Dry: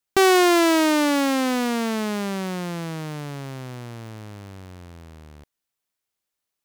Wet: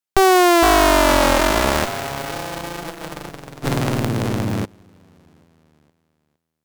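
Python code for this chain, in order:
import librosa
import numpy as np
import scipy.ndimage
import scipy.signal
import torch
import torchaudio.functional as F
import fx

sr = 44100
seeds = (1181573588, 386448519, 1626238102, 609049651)

p1 = fx.sample_sort(x, sr, block=128, at=(1.38, 2.83), fade=0.02)
p2 = scipy.signal.sosfilt(scipy.signal.cheby1(2, 1.0, 160.0, 'highpass', fs=sr, output='sos'), p1)
p3 = p2 + fx.echo_feedback(p2, sr, ms=460, feedback_pct=24, wet_db=-3.5, dry=0)
p4 = fx.cheby_harmonics(p3, sr, harmonics=(3, 4), levels_db=(-7, -9), full_scale_db=-9.5)
p5 = fx.env_flatten(p4, sr, amount_pct=70, at=(3.63, 4.64), fade=0.02)
y = p5 * librosa.db_to_amplitude(5.0)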